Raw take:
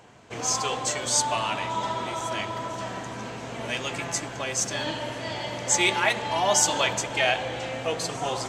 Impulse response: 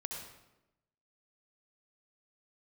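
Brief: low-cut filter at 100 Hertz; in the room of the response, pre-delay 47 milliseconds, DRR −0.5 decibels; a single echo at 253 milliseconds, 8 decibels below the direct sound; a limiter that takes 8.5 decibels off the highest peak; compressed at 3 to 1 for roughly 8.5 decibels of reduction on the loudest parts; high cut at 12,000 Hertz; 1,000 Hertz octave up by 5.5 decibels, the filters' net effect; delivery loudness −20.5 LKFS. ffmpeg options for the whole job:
-filter_complex "[0:a]highpass=100,lowpass=12000,equalizer=frequency=1000:width_type=o:gain=6.5,acompressor=threshold=-27dB:ratio=3,alimiter=limit=-22.5dB:level=0:latency=1,aecho=1:1:253:0.398,asplit=2[link_01][link_02];[1:a]atrim=start_sample=2205,adelay=47[link_03];[link_02][link_03]afir=irnorm=-1:irlink=0,volume=1dB[link_04];[link_01][link_04]amix=inputs=2:normalize=0,volume=7dB"

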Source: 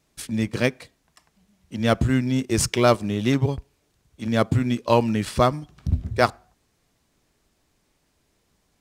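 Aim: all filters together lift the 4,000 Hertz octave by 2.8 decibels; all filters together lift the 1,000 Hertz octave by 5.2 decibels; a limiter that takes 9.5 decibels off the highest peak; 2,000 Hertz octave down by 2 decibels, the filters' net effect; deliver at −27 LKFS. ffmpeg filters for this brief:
ffmpeg -i in.wav -af "equalizer=frequency=1000:width_type=o:gain=8.5,equalizer=frequency=2000:width_type=o:gain=-7.5,equalizer=frequency=4000:width_type=o:gain=5.5,volume=-3dB,alimiter=limit=-12dB:level=0:latency=1" out.wav

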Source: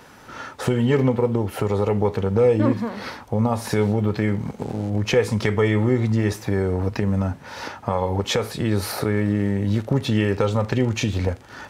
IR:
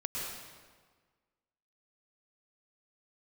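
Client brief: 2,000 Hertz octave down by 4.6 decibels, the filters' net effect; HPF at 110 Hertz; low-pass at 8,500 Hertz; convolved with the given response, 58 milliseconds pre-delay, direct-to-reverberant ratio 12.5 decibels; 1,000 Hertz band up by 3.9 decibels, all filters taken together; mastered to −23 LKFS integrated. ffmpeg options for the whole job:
-filter_complex "[0:a]highpass=110,lowpass=8500,equalizer=frequency=1000:width_type=o:gain=6.5,equalizer=frequency=2000:width_type=o:gain=-7.5,asplit=2[link_01][link_02];[1:a]atrim=start_sample=2205,adelay=58[link_03];[link_02][link_03]afir=irnorm=-1:irlink=0,volume=-16dB[link_04];[link_01][link_04]amix=inputs=2:normalize=0,volume=-0.5dB"

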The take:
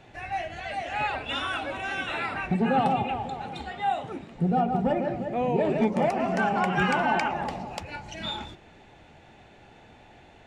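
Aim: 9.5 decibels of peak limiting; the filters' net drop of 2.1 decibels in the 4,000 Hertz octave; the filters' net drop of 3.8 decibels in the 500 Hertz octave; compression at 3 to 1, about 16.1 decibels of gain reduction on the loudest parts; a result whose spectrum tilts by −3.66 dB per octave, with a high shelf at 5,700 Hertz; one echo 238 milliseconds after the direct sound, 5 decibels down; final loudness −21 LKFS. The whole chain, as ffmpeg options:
ffmpeg -i in.wav -af "equalizer=frequency=500:width_type=o:gain=-5,equalizer=frequency=4000:width_type=o:gain=-5.5,highshelf=frequency=5700:gain=8,acompressor=threshold=-44dB:ratio=3,alimiter=level_in=11.5dB:limit=-24dB:level=0:latency=1,volume=-11.5dB,aecho=1:1:238:0.562,volume=23dB" out.wav

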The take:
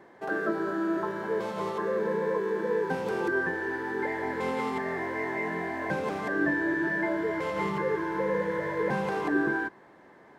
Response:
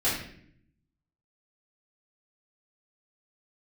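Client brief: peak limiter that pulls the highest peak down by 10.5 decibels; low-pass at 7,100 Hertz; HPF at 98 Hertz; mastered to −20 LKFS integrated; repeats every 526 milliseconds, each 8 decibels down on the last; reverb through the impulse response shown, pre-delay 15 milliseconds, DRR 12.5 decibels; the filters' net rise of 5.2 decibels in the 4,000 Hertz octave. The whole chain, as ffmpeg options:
-filter_complex "[0:a]highpass=98,lowpass=7100,equalizer=frequency=4000:width_type=o:gain=7,alimiter=level_in=1dB:limit=-24dB:level=0:latency=1,volume=-1dB,aecho=1:1:526|1052|1578|2104|2630:0.398|0.159|0.0637|0.0255|0.0102,asplit=2[link_01][link_02];[1:a]atrim=start_sample=2205,adelay=15[link_03];[link_02][link_03]afir=irnorm=-1:irlink=0,volume=-23.5dB[link_04];[link_01][link_04]amix=inputs=2:normalize=0,volume=12.5dB"

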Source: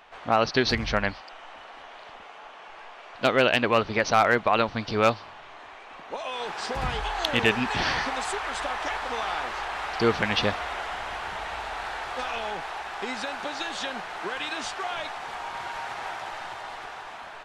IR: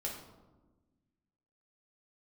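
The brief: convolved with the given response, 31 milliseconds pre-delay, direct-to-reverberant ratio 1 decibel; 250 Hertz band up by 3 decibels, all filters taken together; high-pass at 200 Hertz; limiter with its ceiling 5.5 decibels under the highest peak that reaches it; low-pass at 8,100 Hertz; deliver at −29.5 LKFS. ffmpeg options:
-filter_complex "[0:a]highpass=200,lowpass=8100,equalizer=frequency=250:width_type=o:gain=5.5,alimiter=limit=-11dB:level=0:latency=1,asplit=2[link_01][link_02];[1:a]atrim=start_sample=2205,adelay=31[link_03];[link_02][link_03]afir=irnorm=-1:irlink=0,volume=-2dB[link_04];[link_01][link_04]amix=inputs=2:normalize=0,volume=-4dB"

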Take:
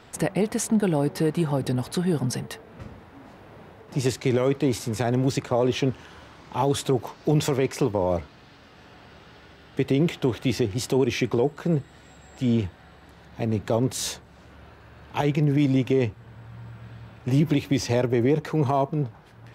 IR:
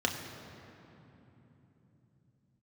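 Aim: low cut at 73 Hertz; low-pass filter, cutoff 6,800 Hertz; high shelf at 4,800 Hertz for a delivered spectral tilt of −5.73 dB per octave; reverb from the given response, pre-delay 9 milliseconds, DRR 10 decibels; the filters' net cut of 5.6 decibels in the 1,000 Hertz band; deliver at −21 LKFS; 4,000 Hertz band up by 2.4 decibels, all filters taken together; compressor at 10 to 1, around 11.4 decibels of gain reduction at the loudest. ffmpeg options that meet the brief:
-filter_complex "[0:a]highpass=73,lowpass=6800,equalizer=frequency=1000:width_type=o:gain=-8,equalizer=frequency=4000:width_type=o:gain=6,highshelf=frequency=4800:gain=-4,acompressor=threshold=-29dB:ratio=10,asplit=2[link_01][link_02];[1:a]atrim=start_sample=2205,adelay=9[link_03];[link_02][link_03]afir=irnorm=-1:irlink=0,volume=-18.5dB[link_04];[link_01][link_04]amix=inputs=2:normalize=0,volume=14dB"

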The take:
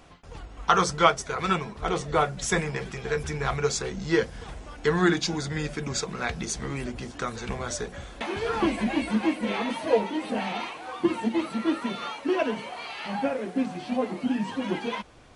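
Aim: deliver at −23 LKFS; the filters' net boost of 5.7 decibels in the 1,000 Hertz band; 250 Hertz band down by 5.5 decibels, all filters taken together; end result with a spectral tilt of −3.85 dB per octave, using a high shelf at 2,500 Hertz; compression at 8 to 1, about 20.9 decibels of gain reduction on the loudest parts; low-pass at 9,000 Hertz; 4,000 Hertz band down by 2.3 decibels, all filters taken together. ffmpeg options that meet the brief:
ffmpeg -i in.wav -af "lowpass=9000,equalizer=frequency=250:width_type=o:gain=-8.5,equalizer=frequency=1000:width_type=o:gain=7.5,highshelf=frequency=2500:gain=5,equalizer=frequency=4000:width_type=o:gain=-8,acompressor=threshold=-32dB:ratio=8,volume=13.5dB" out.wav

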